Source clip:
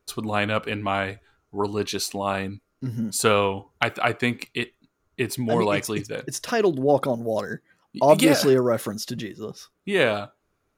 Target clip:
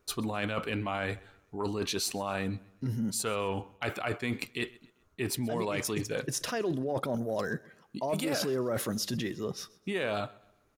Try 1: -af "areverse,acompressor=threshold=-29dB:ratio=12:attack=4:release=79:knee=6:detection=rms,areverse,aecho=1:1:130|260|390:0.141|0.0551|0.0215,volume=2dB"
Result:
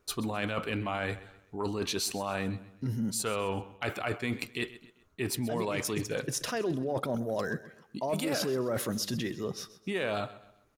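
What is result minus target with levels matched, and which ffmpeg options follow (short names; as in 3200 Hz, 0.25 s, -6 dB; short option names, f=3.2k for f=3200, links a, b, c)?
echo-to-direct +6 dB
-af "areverse,acompressor=threshold=-29dB:ratio=12:attack=4:release=79:knee=6:detection=rms,areverse,aecho=1:1:130|260|390:0.0708|0.0276|0.0108,volume=2dB"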